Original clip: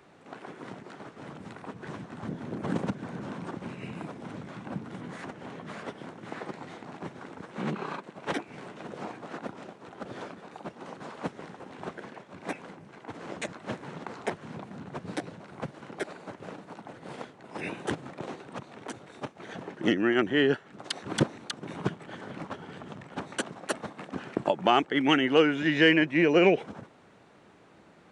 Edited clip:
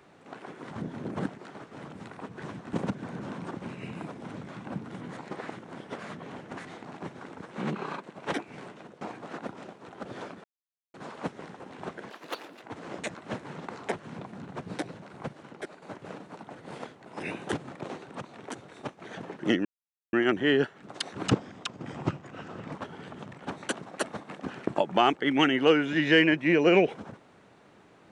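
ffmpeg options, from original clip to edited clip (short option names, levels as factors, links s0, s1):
-filter_complex "[0:a]asplit=15[s0][s1][s2][s3][s4][s5][s6][s7][s8][s9][s10][s11][s12][s13][s14];[s0]atrim=end=0.712[s15];[s1]atrim=start=2.178:end=2.732[s16];[s2]atrim=start=0.708:end=2.182[s17];[s3]atrim=start=2.728:end=5.172[s18];[s4]atrim=start=5.168:end=6.652,asetpts=PTS-STARTPTS,areverse[s19];[s5]atrim=start=6.648:end=9.01,asetpts=PTS-STARTPTS,afade=t=out:st=1.982:d=0.38:silence=0.125893[s20];[s6]atrim=start=9.01:end=10.44,asetpts=PTS-STARTPTS,afade=t=in:d=0.004:c=hsin:silence=0.125893,afade=t=out:st=1.426:d=0.004:c=hsin[s21];[s7]atrim=start=10.44:end=10.94,asetpts=PTS-STARTPTS,volume=0[s22];[s8]atrim=start=10.94:end=12.104,asetpts=PTS-STARTPTS,afade=t=in:d=0.004:c=hsin[s23];[s9]atrim=start=12.1:end=13,asetpts=PTS-STARTPTS,asetrate=76293,aresample=44100,atrim=end_sample=22942,asetpts=PTS-STARTPTS[s24];[s10]atrim=start=12.996:end=16.2,asetpts=PTS-STARTPTS,afade=t=out:st=2.534:d=0.67:silence=0.398107[s25];[s11]atrim=start=16.2:end=20.03,asetpts=PTS-STARTPTS,afade=t=in:d=0.004:c=hsin:silence=0.398107,afade=t=out:st=3.826:d=0.004:c=hsin,apad=pad_dur=0.48[s26];[s12]atrim=start=20.03:end=21.164,asetpts=PTS-STARTPTS,afade=t=in:d=0.004:c=hsin[s27];[s13]atrim=start=21.16:end=22.42,asetpts=PTS-STARTPTS,asetrate=37926,aresample=44100[s28];[s14]atrim=start=22.416[s29];[s15][s16]acrossfade=d=0.004:c1=hsin:c2=hsin[s30];[s30][s17]acrossfade=d=0.004:c1=hsin:c2=hsin[s31];[s31][s18]acrossfade=d=0.004:c1=hsin:c2=hsin[s32];[s32][s19]acrossfade=d=0.004:c1=hsin:c2=hsin[s33];[s20][s21][s22][s23]concat=n=4:v=0:a=1[s34];[s33][s34]acrossfade=d=0.004:c1=hsin:c2=hsin[s35];[s35][s24]acrossfade=d=0.004:c1=hsin:c2=hsin[s36];[s25][s26][s27]concat=n=3:v=0:a=1[s37];[s36][s37]acrossfade=d=0.004:c1=hsin:c2=hsin[s38];[s38][s28]acrossfade=d=0.004:c1=hsin:c2=hsin[s39];[s39][s29]acrossfade=d=0.004:c1=hsin:c2=hsin"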